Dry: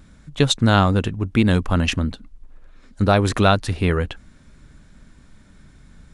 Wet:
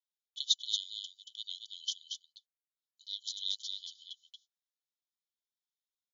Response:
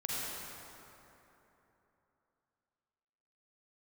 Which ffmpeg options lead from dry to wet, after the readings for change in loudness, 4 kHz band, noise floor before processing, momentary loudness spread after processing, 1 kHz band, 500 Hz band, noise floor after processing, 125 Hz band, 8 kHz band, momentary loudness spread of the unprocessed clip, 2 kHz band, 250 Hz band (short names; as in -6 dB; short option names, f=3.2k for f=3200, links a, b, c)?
-17.0 dB, -6.5 dB, -50 dBFS, 19 LU, under -40 dB, under -40 dB, under -85 dBFS, under -40 dB, -9.0 dB, 9 LU, under -40 dB, under -40 dB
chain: -af "aecho=1:1:230:0.501,afftfilt=real='re*between(b*sr/4096,3000,7100)':imag='im*between(b*sr/4096,3000,7100)':win_size=4096:overlap=0.75,agate=range=-28dB:threshold=-54dB:ratio=16:detection=peak,volume=-7dB"